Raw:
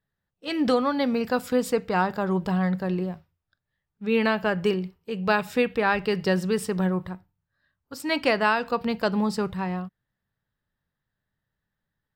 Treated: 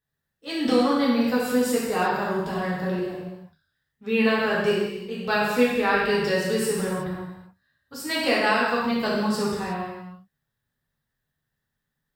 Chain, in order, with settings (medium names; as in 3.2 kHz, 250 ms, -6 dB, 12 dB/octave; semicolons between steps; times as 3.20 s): treble shelf 4.9 kHz +6.5 dB; gated-style reverb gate 400 ms falling, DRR -7 dB; trim -6.5 dB